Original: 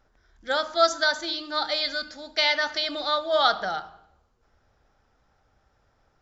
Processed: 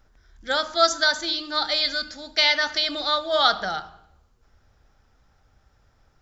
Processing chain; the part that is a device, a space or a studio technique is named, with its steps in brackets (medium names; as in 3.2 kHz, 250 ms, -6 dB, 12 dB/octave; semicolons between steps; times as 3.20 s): smiley-face EQ (bass shelf 130 Hz +5.5 dB; peaking EQ 620 Hz -3.5 dB 2 oct; treble shelf 5.1 kHz +4 dB); trim +3 dB